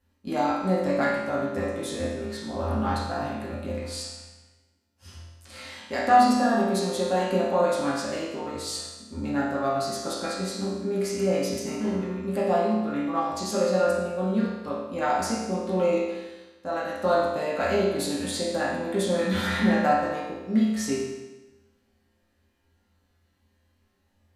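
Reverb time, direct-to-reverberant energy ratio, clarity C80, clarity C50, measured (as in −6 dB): 1.1 s, −8.5 dB, 3.0 dB, −0.5 dB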